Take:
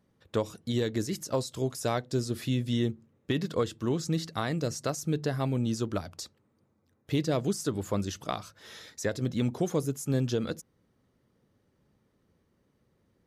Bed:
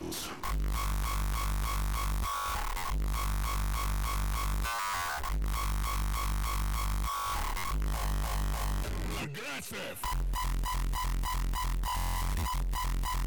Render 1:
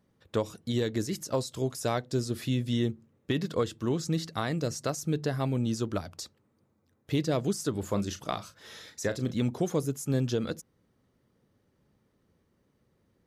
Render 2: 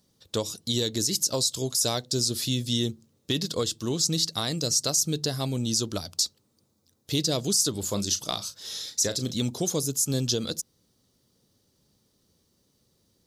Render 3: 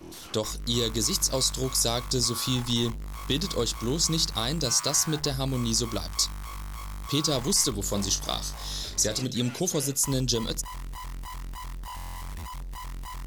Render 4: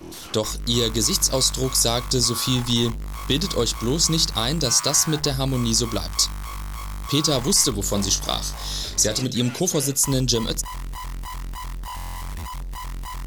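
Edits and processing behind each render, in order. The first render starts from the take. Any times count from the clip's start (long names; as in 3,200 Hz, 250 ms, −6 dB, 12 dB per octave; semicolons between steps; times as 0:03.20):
0:07.79–0:09.35: double-tracking delay 35 ms −11.5 dB
high shelf with overshoot 3,000 Hz +13.5 dB, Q 1.5
mix in bed −5.5 dB
level +5.5 dB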